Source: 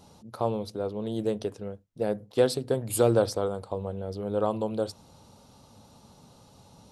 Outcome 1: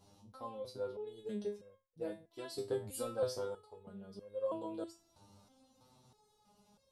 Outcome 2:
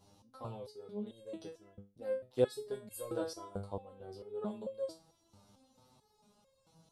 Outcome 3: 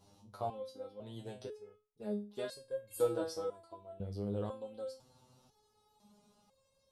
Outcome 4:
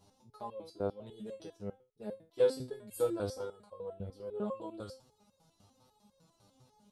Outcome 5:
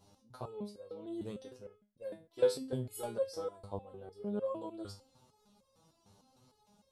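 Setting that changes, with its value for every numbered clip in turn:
step-sequenced resonator, speed: 3.1, 4.5, 2, 10, 6.6 Hertz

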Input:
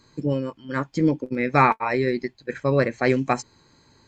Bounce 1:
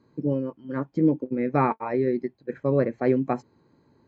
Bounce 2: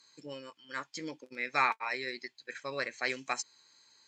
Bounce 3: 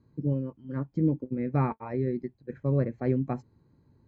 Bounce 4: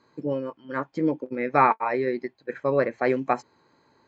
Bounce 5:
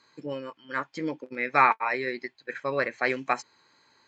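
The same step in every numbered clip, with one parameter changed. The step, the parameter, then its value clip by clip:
resonant band-pass, frequency: 290, 5,900, 100, 740, 1,900 Hertz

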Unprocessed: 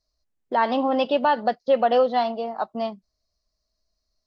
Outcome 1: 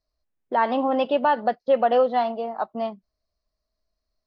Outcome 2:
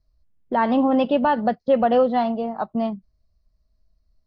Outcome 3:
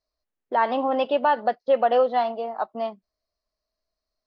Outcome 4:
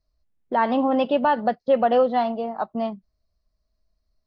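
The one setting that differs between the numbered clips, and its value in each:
bass and treble, bass: −2, +15, −10, +7 decibels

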